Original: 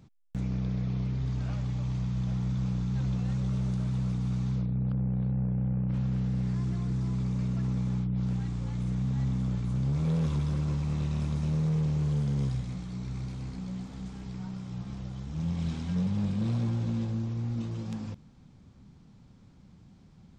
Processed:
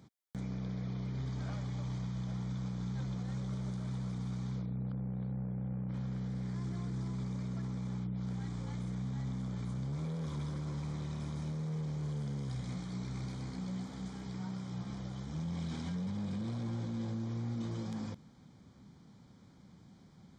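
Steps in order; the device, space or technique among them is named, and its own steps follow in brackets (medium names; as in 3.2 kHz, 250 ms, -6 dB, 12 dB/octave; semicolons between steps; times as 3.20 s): PA system with an anti-feedback notch (high-pass 190 Hz 6 dB/octave; Butterworth band-stop 2.7 kHz, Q 5.8; peak limiter -32 dBFS, peak gain reduction 9.5 dB); trim +1 dB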